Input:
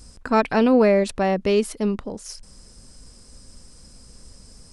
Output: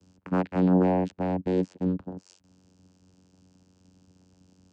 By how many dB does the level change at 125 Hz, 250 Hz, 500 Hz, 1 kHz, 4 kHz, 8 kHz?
+3.5 dB, -3.5 dB, -9.5 dB, -8.0 dB, under -15 dB, under -20 dB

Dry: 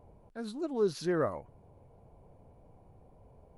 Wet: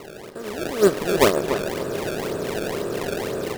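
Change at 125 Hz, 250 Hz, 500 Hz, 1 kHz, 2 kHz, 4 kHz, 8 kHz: +11.5, +11.0, +13.5, +15.5, +18.0, +19.0, +20.5 dB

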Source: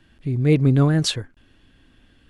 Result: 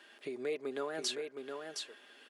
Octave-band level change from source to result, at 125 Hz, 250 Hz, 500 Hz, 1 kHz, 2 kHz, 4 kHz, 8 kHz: under -40 dB, -25.0 dB, -11.0 dB, -11.0 dB, -11.0 dB, -11.5 dB, -10.0 dB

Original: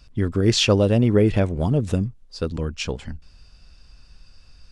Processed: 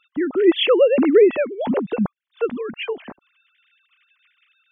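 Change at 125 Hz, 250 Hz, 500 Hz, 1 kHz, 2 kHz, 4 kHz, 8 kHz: -17.5 dB, +1.5 dB, +6.5 dB, +2.5 dB, +3.0 dB, -1.0 dB, under -40 dB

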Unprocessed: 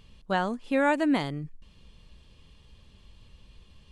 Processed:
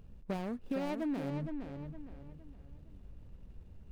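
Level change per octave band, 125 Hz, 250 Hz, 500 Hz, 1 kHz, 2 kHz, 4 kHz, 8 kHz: -3.5 dB, -8.0 dB, -11.0 dB, -15.5 dB, -18.5 dB, -15.0 dB, n/a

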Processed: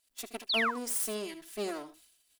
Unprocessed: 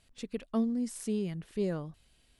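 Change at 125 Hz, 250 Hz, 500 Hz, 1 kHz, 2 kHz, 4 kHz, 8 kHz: under -15 dB, -9.0 dB, -1.0 dB, +11.0 dB, +18.0 dB, +16.5 dB, +10.0 dB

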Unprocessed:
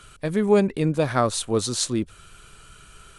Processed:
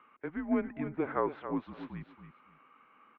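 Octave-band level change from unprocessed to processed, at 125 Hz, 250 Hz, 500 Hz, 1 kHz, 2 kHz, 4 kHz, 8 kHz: -19.0 dB, -10.0 dB, -14.0 dB, -10.0 dB, -10.5 dB, under -30 dB, under -40 dB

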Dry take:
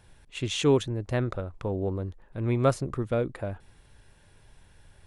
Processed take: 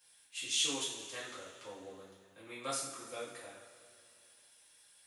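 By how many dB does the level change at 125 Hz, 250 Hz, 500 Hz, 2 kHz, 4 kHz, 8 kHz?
-32.0, -19.5, -18.5, -5.5, +0.5, +5.0 dB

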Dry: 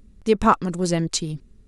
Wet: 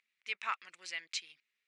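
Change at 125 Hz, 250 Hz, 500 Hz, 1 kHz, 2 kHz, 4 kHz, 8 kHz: under -40 dB, under -40 dB, -36.5 dB, -19.5 dB, -6.0 dB, -10.5 dB, -18.0 dB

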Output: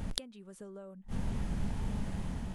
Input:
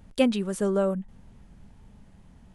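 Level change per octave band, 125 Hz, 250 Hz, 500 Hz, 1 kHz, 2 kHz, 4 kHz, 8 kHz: -0.5, -12.0, -21.0, -10.5, -11.0, -3.5, -5.0 dB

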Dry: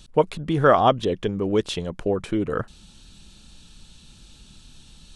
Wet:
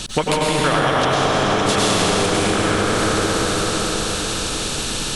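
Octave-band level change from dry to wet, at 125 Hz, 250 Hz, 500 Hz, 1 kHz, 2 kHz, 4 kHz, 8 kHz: +6.0, +5.5, +3.5, +6.0, +12.5, +15.5, +24.0 dB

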